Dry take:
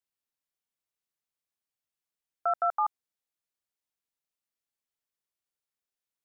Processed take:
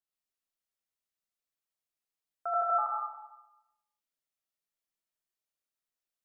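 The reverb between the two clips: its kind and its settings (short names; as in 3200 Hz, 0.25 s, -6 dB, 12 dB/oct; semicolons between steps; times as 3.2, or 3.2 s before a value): digital reverb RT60 0.96 s, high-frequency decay 1×, pre-delay 40 ms, DRR -4 dB; gain -7.5 dB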